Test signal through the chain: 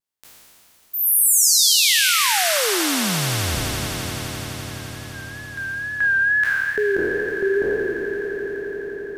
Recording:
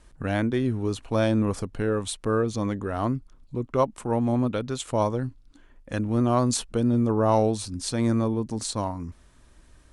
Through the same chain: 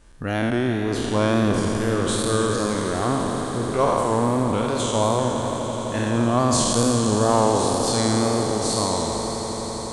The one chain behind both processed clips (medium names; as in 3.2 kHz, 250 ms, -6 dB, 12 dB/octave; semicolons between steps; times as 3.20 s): spectral sustain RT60 2.62 s; wow and flutter 65 cents; echo with a slow build-up 85 ms, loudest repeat 8, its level -16.5 dB